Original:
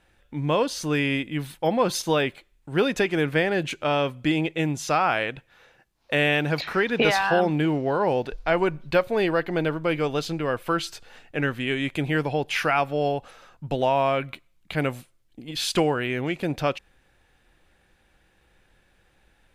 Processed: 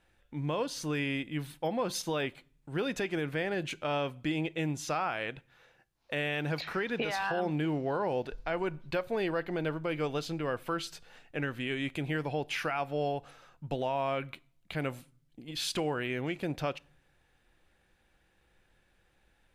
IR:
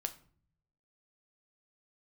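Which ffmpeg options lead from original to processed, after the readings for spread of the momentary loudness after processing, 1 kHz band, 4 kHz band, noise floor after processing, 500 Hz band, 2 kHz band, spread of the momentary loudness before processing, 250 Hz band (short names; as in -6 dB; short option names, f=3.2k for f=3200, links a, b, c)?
7 LU, -9.5 dB, -8.5 dB, -70 dBFS, -9.5 dB, -9.5 dB, 10 LU, -8.5 dB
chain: -filter_complex "[0:a]alimiter=limit=-15.5dB:level=0:latency=1:release=113,asplit=2[a][b];[1:a]atrim=start_sample=2205[c];[b][c]afir=irnorm=-1:irlink=0,volume=-10dB[d];[a][d]amix=inputs=2:normalize=0,volume=-9dB"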